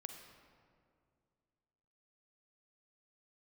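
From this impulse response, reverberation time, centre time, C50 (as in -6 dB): 2.3 s, 41 ms, 5.5 dB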